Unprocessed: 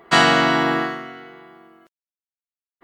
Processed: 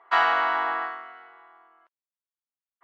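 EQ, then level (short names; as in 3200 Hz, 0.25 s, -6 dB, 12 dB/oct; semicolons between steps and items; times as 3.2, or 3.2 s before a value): ladder band-pass 1200 Hz, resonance 35%; +5.5 dB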